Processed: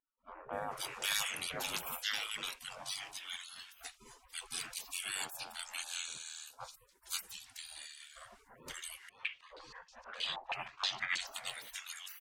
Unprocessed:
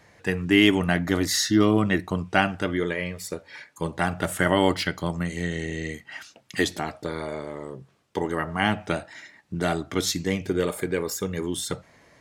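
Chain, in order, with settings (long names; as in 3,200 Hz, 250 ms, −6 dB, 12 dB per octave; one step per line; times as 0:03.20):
gate on every frequency bin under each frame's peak −30 dB weak
multiband delay without the direct sound lows, highs 530 ms, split 1,300 Hz
0:09.09–0:11.27: low-pass on a step sequencer 6.3 Hz 850–5,700 Hz
level +7 dB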